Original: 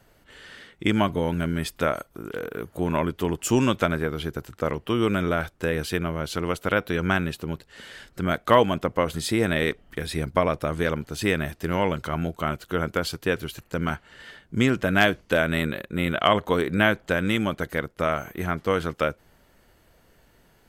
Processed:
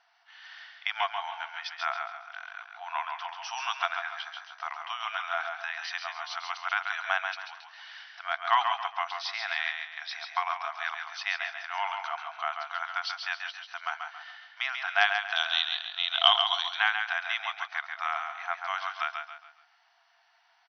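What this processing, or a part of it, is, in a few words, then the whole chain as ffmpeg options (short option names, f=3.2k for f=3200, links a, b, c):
ducked delay: -filter_complex "[0:a]asettb=1/sr,asplit=3[a][b][c];[a]atrim=end=15.364[d];[b]atrim=start=15.36:end=16.75,asetpts=PTS-STARTPTS,afade=t=in:d=0.004:c=qsin,afade=t=out:st=1.386:d=0.004:c=qsin,highshelf=f=2.7k:t=q:w=3:g=7.5[e];[c]atrim=start=16.746[f];[d][e]acrossfade=d=0.004:c1=hsin:c2=qsin[g];[g][f]acrossfade=d=0.004:c1=qsin:c2=hsin,afftfilt=real='re*between(b*sr/4096,660,6100)':imag='im*between(b*sr/4096,660,6100)':win_size=4096:overlap=0.75,aecho=1:1:137|274|411|548:0.501|0.165|0.0546|0.018,asplit=3[h][i][j];[i]adelay=156,volume=-8.5dB[k];[j]apad=whole_len=943149[l];[k][l]sidechaincompress=threshold=-27dB:ratio=8:attack=11:release=712[m];[h][m]amix=inputs=2:normalize=0,volume=-3dB"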